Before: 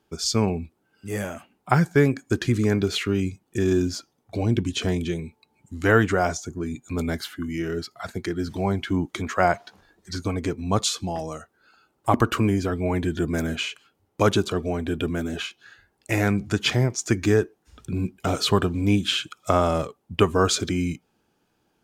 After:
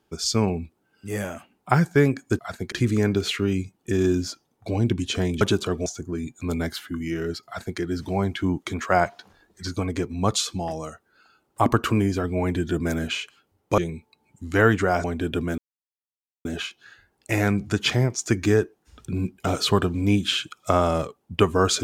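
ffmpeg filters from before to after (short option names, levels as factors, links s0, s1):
-filter_complex "[0:a]asplit=8[s0][s1][s2][s3][s4][s5][s6][s7];[s0]atrim=end=2.392[s8];[s1]atrim=start=7.938:end=8.272[s9];[s2]atrim=start=2.388:end=5.082[s10];[s3]atrim=start=14.258:end=14.712[s11];[s4]atrim=start=6.338:end=14.262[s12];[s5]atrim=start=5.078:end=6.342[s13];[s6]atrim=start=14.708:end=15.25,asetpts=PTS-STARTPTS,afade=t=out:st=0.538:d=0.004:c=hsin,apad=pad_dur=0.87[s14];[s7]atrim=start=15.25,asetpts=PTS-STARTPTS,afade=t=in:d=0.004:c=hsin[s15];[s8][s9]acrossfade=d=0.004:c1=hsin:c2=hsin[s16];[s16][s10]acrossfade=d=0.004:c1=hsin:c2=hsin[s17];[s17][s11]acrossfade=d=0.004:c1=hsin:c2=hsin[s18];[s18][s12]acrossfade=d=0.004:c1=hsin:c2=hsin[s19];[s19][s13]acrossfade=d=0.004:c1=hsin:c2=hsin[s20];[s14][s15]concat=n=2:v=0:a=1[s21];[s20][s21]acrossfade=d=0.004:c1=hsin:c2=hsin"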